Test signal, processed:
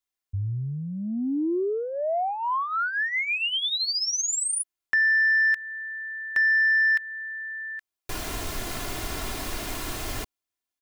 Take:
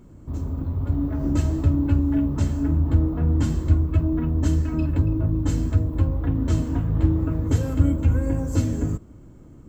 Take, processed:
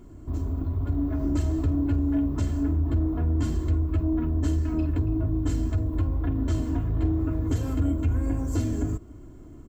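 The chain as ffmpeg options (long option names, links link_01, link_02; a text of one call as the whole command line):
ffmpeg -i in.wav -af "asoftclip=type=tanh:threshold=-14dB,aecho=1:1:2.9:0.5,acompressor=threshold=-27dB:ratio=1.5" out.wav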